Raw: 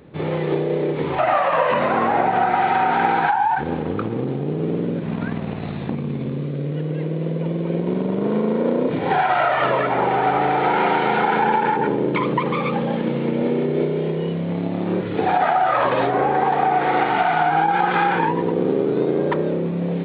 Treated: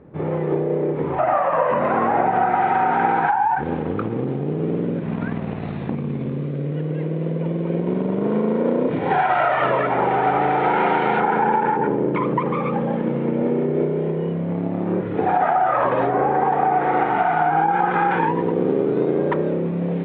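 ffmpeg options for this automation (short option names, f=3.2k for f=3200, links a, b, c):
-af "asetnsamples=n=441:p=0,asendcmd='1.85 lowpass f 1900;3.63 lowpass f 2700;11.2 lowpass f 1700;18.11 lowpass f 2600',lowpass=1.4k"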